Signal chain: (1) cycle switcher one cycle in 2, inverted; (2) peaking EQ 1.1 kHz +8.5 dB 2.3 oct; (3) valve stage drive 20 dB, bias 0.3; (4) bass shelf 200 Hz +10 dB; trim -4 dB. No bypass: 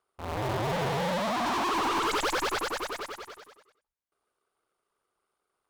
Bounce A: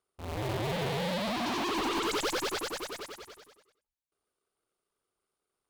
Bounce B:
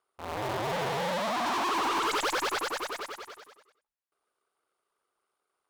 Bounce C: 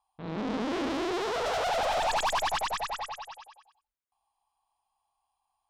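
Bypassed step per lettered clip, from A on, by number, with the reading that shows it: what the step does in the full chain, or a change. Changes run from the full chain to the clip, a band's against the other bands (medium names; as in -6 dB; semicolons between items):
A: 2, 1 kHz band -5.0 dB; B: 4, 125 Hz band -6.5 dB; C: 1, 125 Hz band -9.0 dB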